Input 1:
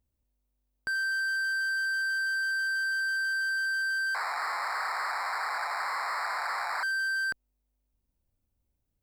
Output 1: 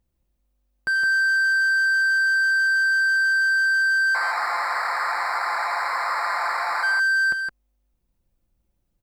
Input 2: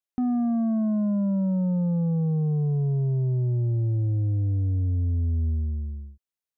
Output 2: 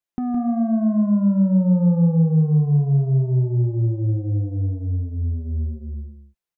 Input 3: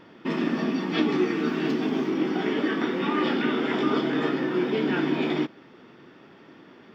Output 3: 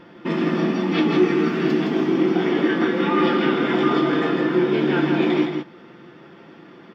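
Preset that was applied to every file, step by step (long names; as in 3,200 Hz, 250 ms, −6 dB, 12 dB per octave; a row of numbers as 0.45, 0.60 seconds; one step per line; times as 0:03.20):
high-shelf EQ 3,900 Hz −5 dB
comb filter 5.8 ms, depth 42%
on a send: single-tap delay 164 ms −5.5 dB
on the sum: loudness normalisation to −20 LKFS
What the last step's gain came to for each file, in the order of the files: +6.5, +3.5, +4.0 decibels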